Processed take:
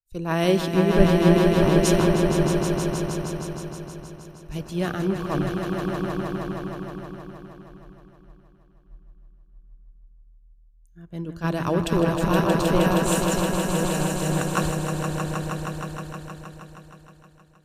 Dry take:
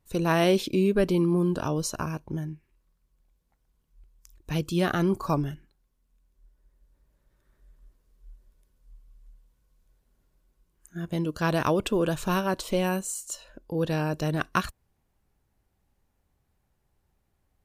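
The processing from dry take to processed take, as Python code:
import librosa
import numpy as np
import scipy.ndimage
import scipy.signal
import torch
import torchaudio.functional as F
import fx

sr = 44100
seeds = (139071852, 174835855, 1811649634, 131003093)

y = fx.low_shelf(x, sr, hz=110.0, db=8.5)
y = fx.echo_swell(y, sr, ms=157, loudest=5, wet_db=-5)
y = fx.band_widen(y, sr, depth_pct=100)
y = y * 10.0 ** (-1.5 / 20.0)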